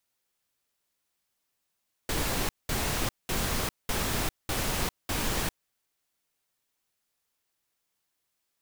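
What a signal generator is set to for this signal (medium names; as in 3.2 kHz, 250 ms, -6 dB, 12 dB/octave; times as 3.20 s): noise bursts pink, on 0.40 s, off 0.20 s, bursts 6, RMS -29 dBFS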